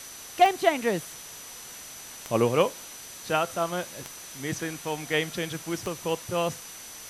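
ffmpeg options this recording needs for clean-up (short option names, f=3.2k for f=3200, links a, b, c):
-af "adeclick=t=4,bandreject=f=6k:w=30,afwtdn=0.0079"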